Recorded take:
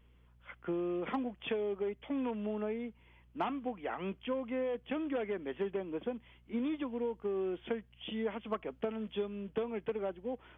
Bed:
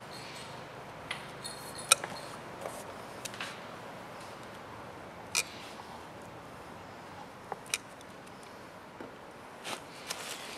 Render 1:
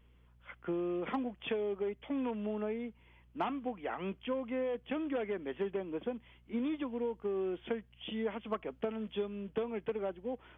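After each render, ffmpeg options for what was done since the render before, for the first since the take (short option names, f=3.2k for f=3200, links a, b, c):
-af anull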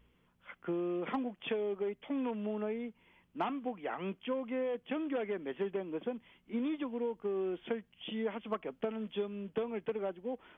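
-af "bandreject=f=60:t=h:w=4,bandreject=f=120:t=h:w=4"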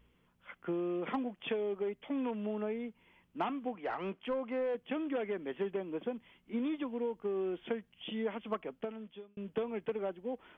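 -filter_complex "[0:a]asettb=1/sr,asplit=3[a][b][c];[a]atrim=end=3.754[d];[b]atrim=start=3.75:end=4.75,asetpts=PTS-STARTPTS,afade=t=in:d=0.004:c=qsin,afade=t=out:st=0.996:d=0.004:c=qsin,asplit=2[e][f];[f]highpass=f=720:p=1,volume=12dB,asoftclip=type=tanh:threshold=-25dB[g];[e][g]amix=inputs=2:normalize=0,lowpass=f=1.3k:p=1,volume=-6dB[h];[c]atrim=start=4.746[i];[d][h]acrossfade=d=0.004:c1=hsin:c2=qsin[j];[j][i]acrossfade=d=0.004:c1=qsin:c2=hsin,asplit=2[k][l];[k]atrim=end=9.37,asetpts=PTS-STARTPTS,afade=t=out:st=8.58:d=0.79[m];[l]atrim=start=9.37,asetpts=PTS-STARTPTS,afade=t=in:d=0.004:c=hsin[n];[m][n]concat=n=2:v=0:a=1"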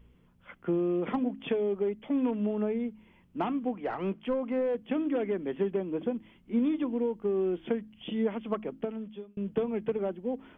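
-af "lowshelf=f=430:g=11.5,bandreject=f=53.8:t=h:w=4,bandreject=f=107.6:t=h:w=4,bandreject=f=161.4:t=h:w=4,bandreject=f=215.2:t=h:w=4,bandreject=f=269:t=h:w=4,bandreject=f=322.8:t=h:w=4"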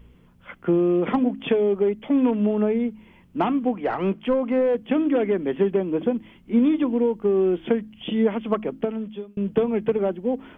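-af "volume=8.5dB"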